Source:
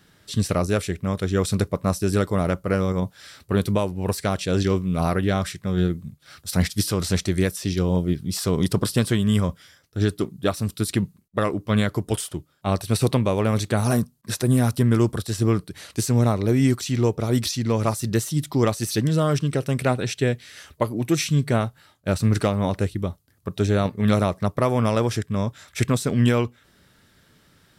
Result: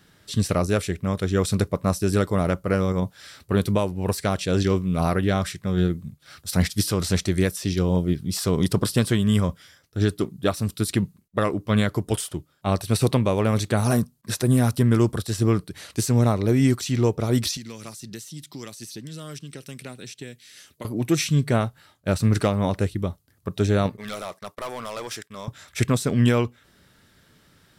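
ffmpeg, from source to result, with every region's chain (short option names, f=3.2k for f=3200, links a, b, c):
-filter_complex "[0:a]asettb=1/sr,asplit=3[a][b][c];[a]atrim=end=17.574[d];[b]atrim=start=17.57:end=20.85,asetpts=PTS-STARTPTS,afade=t=in:d=0.004:c=qsin,afade=t=out:st=3.276:d=0.004:c=qsin,highpass=180,equalizer=f=920:w=0.47:g=-12,acrossover=split=1100|6500[e][f][g];[e]acompressor=threshold=-37dB:ratio=4[h];[f]acompressor=threshold=-42dB:ratio=4[i];[g]acompressor=threshold=-48dB:ratio=4[j];[h][i][j]amix=inputs=3:normalize=0[k];[c]atrim=start=20.846[l];[d][k]acrossfade=d=0.004:c1=hsin:c2=qsin[m];[m][l]acrossfade=d=0.004:c1=qsin:c2=hsin,asettb=1/sr,asplit=3[n][o][p];[n]atrim=end=23.974[q];[o]atrim=start=23.97:end=25.48,asetpts=PTS-STARTPTS,afade=t=in:d=0.004:c=qsin,afade=t=out:st=1.506:d=0.004:c=qsin,highpass=f=1.3k:p=1,agate=range=-18dB:threshold=-54dB:ratio=16:release=100:detection=peak,volume=27dB,asoftclip=hard,volume=-27dB[r];[p]atrim=start=25.476[s];[q][r]acrossfade=d=0.004:c1=hsin:c2=qsin[t];[t][s]acrossfade=d=0.004:c1=qsin:c2=hsin"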